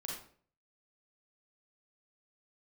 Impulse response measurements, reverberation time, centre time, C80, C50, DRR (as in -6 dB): 0.50 s, 47 ms, 6.5 dB, 0.5 dB, -3.0 dB